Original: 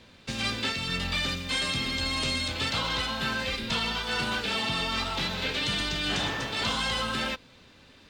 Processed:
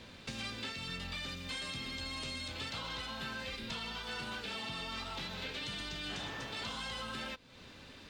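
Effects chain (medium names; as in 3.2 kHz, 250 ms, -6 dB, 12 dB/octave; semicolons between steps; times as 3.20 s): compression 3:1, threshold -45 dBFS, peak gain reduction 15 dB; trim +1.5 dB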